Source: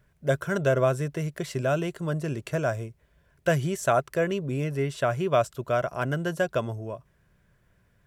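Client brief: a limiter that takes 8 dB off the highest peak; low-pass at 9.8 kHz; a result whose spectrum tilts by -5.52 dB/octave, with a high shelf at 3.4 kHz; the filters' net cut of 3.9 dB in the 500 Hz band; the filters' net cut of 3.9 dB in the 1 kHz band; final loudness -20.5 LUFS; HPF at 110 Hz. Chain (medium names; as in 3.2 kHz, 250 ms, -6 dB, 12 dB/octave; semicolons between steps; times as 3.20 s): high-pass 110 Hz; low-pass 9.8 kHz; peaking EQ 500 Hz -3.5 dB; peaking EQ 1 kHz -5 dB; treble shelf 3.4 kHz +4 dB; trim +11 dB; peak limiter -7 dBFS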